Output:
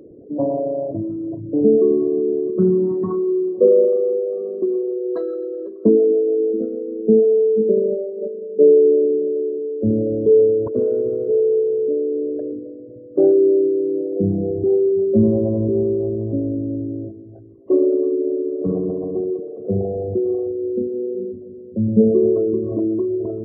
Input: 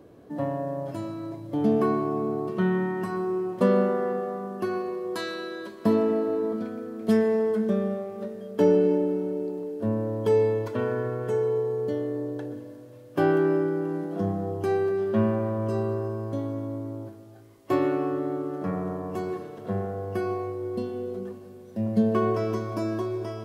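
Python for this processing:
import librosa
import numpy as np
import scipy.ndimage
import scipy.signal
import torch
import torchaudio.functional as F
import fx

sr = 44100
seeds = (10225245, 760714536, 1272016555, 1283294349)

y = fx.envelope_sharpen(x, sr, power=3.0)
y = fx.doubler(y, sr, ms=12.0, db=-13.0, at=(6.09, 7.25))
y = F.gain(torch.from_numpy(y), 8.5).numpy()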